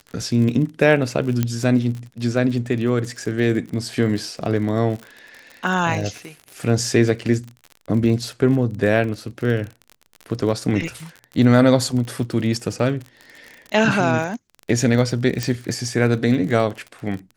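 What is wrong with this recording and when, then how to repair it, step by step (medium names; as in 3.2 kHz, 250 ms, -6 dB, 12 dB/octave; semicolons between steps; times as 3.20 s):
crackle 37 per s -28 dBFS
1.43 s: pop -7 dBFS
15.43 s: pop -8 dBFS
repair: de-click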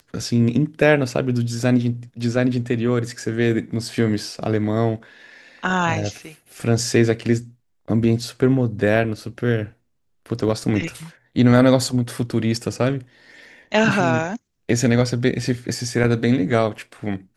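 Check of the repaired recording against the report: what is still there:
nothing left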